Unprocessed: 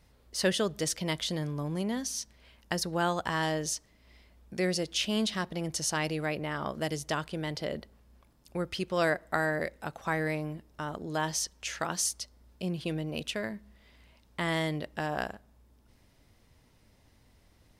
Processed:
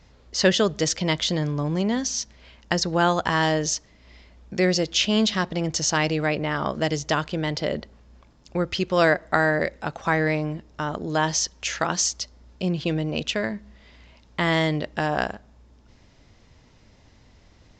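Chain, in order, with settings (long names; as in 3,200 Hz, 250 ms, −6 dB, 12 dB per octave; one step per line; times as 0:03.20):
downsampling to 16,000 Hz
level +8.5 dB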